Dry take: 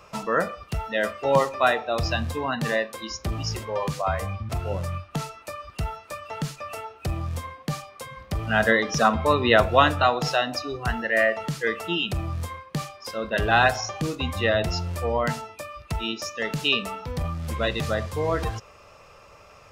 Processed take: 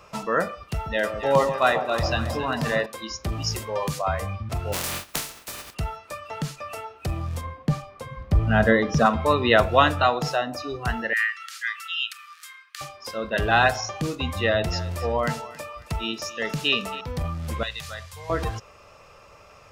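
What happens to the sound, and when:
0.64–2.86 echo with dull and thin repeats by turns 0.136 s, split 1000 Hz, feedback 73%, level -7.5 dB
3.42–3.99 high shelf 6600 Hz +9.5 dB
4.72–5.73 spectral contrast lowered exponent 0.25
7.41–9.06 tilt -2.5 dB/oct
10.18–10.58 bell 3400 Hz -2 dB -> -11.5 dB 1.8 oct
11.13–12.81 steep high-pass 1200 Hz 96 dB/oct
14.45–17.01 thinning echo 0.274 s, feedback 41%, level -16 dB
17.63–18.3 passive tone stack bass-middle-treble 10-0-10

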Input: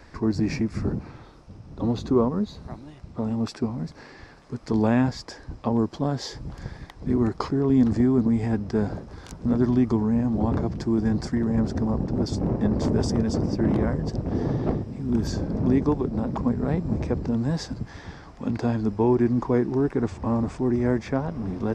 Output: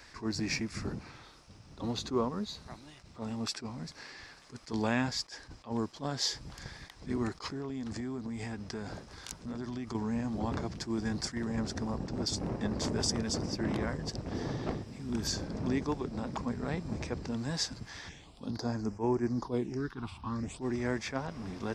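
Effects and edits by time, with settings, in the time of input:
7.41–9.95 compressor, threshold -24 dBFS
18.08–20.6 phaser stages 6, 0.22 Hz -> 0.76 Hz, lowest notch 470–3700 Hz
whole clip: tilt shelf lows -8.5 dB, about 1300 Hz; attack slew limiter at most 260 dB/s; gain -3 dB

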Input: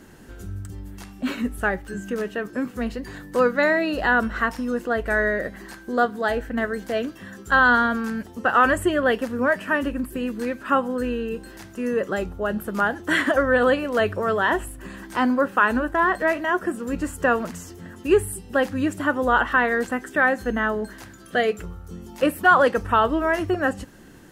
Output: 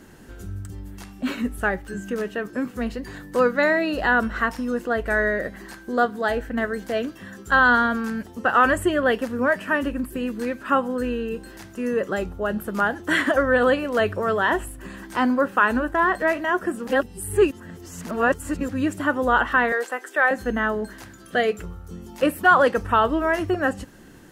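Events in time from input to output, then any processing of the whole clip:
16.87–18.69 reverse
19.72–20.31 HPF 400 Hz 24 dB/oct

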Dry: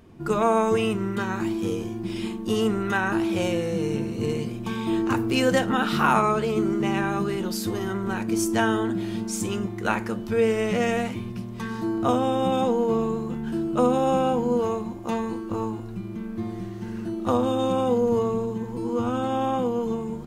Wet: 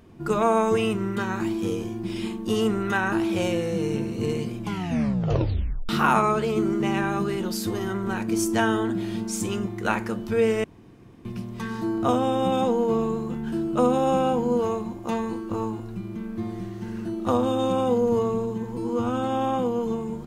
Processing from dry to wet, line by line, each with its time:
4.58 tape stop 1.31 s
10.64–11.25 room tone

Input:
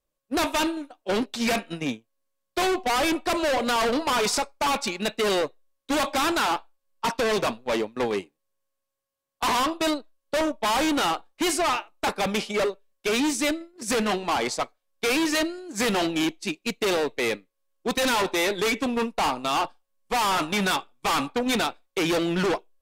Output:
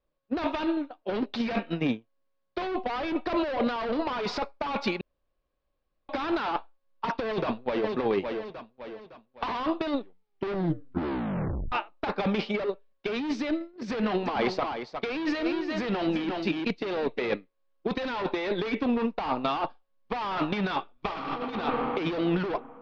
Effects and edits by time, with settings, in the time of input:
5.01–6.09 room tone
7.14–7.95 echo throw 0.56 s, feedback 40%, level -11 dB
9.84 tape stop 1.88 s
13.9–17.34 echo 0.356 s -11 dB
20.93–21.39 reverb throw, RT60 2.8 s, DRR -4 dB
whole clip: negative-ratio compressor -26 dBFS, ratio -0.5; steep low-pass 4900 Hz 36 dB/oct; high shelf 3000 Hz -10.5 dB

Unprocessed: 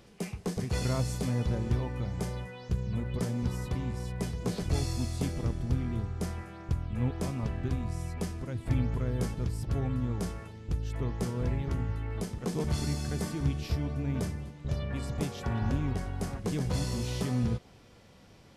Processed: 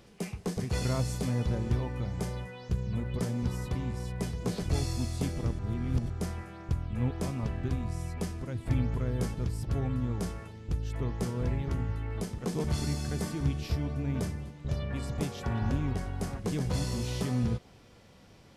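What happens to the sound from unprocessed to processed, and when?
5.59–6.1 reverse

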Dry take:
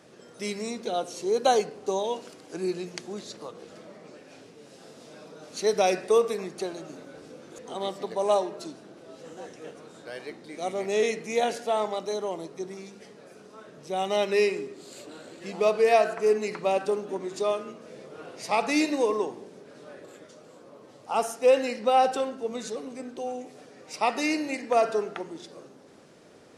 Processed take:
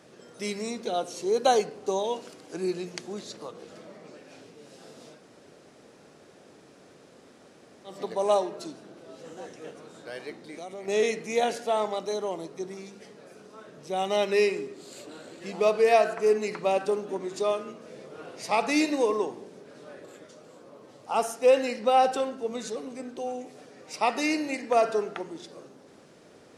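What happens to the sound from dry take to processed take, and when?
5.16–7.92 room tone, crossfade 0.16 s
10.41–10.88 compressor, threshold -36 dBFS

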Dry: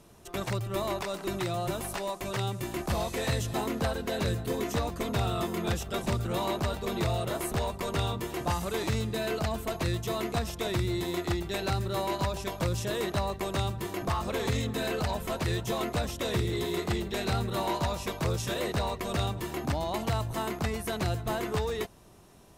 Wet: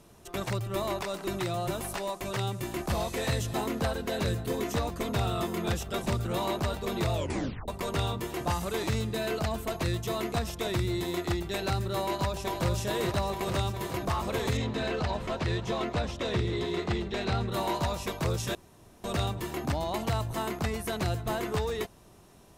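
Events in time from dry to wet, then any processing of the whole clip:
7.13 tape stop 0.55 s
12.01–12.67 echo throw 0.43 s, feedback 80%, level -6 dB
14.57–17.52 LPF 5000 Hz
18.55–19.04 room tone

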